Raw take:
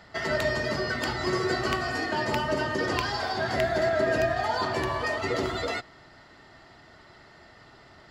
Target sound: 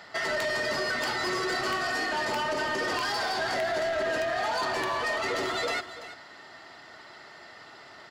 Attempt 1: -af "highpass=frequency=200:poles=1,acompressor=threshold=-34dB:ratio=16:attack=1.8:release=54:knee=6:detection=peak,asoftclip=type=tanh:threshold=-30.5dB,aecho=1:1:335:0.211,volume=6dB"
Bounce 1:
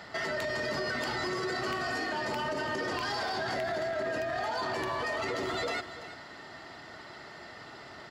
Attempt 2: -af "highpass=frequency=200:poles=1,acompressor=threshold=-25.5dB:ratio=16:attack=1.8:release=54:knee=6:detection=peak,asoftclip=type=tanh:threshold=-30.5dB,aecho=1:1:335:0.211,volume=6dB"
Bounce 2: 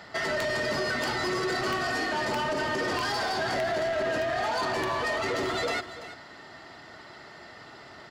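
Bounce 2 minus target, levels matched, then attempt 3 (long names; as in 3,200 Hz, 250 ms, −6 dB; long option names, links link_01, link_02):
250 Hz band +3.5 dB
-af "highpass=frequency=580:poles=1,acompressor=threshold=-25.5dB:ratio=16:attack=1.8:release=54:knee=6:detection=peak,asoftclip=type=tanh:threshold=-30.5dB,aecho=1:1:335:0.211,volume=6dB"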